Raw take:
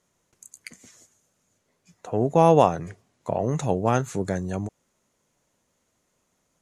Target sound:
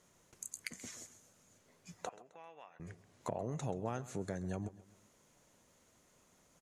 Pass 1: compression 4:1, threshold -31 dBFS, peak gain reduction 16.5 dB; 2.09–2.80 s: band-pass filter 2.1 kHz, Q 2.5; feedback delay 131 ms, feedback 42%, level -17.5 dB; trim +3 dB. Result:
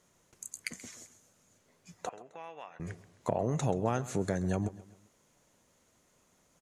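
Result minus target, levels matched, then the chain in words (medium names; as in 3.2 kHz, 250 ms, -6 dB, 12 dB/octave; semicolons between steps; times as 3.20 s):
compression: peak gain reduction -8.5 dB
compression 4:1, threshold -42.5 dBFS, peak gain reduction 25.5 dB; 2.09–2.80 s: band-pass filter 2.1 kHz, Q 2.5; feedback delay 131 ms, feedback 42%, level -17.5 dB; trim +3 dB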